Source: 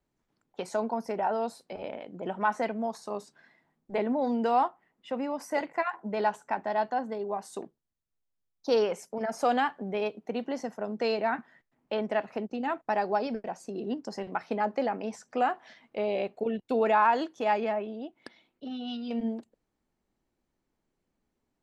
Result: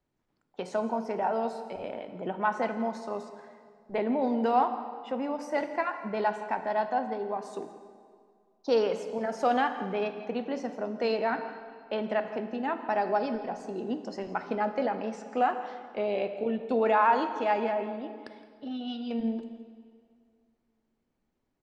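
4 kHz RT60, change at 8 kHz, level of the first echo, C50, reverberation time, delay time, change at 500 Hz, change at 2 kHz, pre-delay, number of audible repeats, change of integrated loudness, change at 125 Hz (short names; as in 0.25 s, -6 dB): 1.7 s, n/a, -17.5 dB, 9.5 dB, 2.1 s, 0.166 s, +0.5 dB, 0.0 dB, 4 ms, 1, +0.5 dB, n/a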